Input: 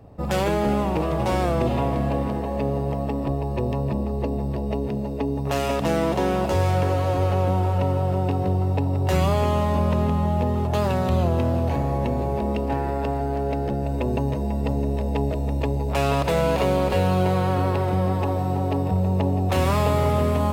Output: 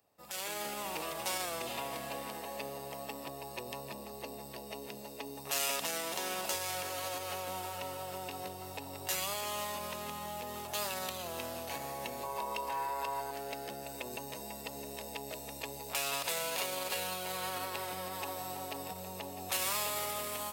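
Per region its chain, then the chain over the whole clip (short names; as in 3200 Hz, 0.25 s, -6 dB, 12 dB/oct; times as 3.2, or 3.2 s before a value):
12.23–13.31 bell 1000 Hz +14.5 dB 0.37 oct + comb 1.9 ms, depth 39%
whole clip: limiter -15.5 dBFS; differentiator; AGC gain up to 10.5 dB; gain -3.5 dB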